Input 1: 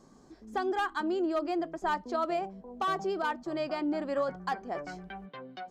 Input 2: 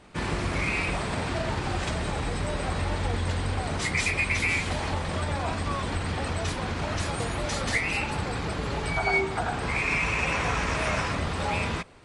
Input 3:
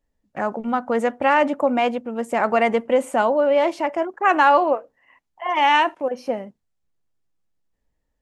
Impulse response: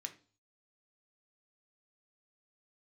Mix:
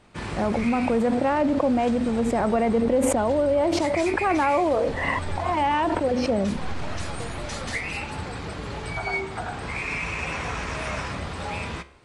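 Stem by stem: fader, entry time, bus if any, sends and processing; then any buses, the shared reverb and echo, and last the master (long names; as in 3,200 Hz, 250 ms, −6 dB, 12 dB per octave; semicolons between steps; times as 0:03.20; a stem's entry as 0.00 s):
−12.5 dB, 2.20 s, no send, no processing
+1.5 dB, 0.00 s, no send, flanger 0.22 Hz, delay 8.3 ms, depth 8.1 ms, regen +83%
−1.0 dB, 0.00 s, no send, tilt shelving filter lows +8 dB, about 770 Hz; low-pass that shuts in the quiet parts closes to 2,100 Hz, open at −13.5 dBFS; level that may fall only so fast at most 21 dB per second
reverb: not used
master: downward compressor 2.5 to 1, threshold −21 dBFS, peak gain reduction 7.5 dB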